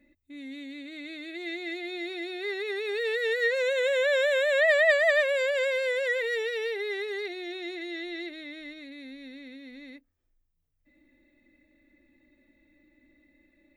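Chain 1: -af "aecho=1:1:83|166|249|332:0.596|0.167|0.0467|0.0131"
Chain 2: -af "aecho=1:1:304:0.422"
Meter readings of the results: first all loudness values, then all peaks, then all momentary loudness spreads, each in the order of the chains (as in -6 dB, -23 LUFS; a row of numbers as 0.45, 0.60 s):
-25.5, -26.0 LUFS; -9.0, -10.5 dBFS; 21, 21 LU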